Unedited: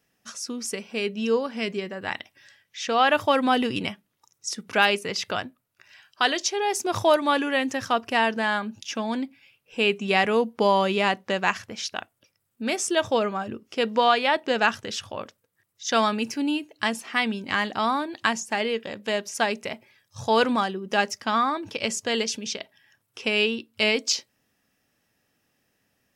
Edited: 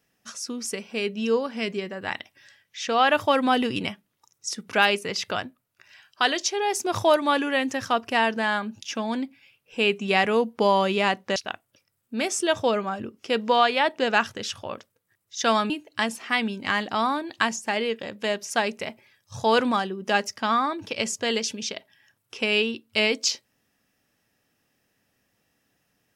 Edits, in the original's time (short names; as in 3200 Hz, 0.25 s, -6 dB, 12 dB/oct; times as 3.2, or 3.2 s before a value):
11.36–11.84 cut
16.18–16.54 cut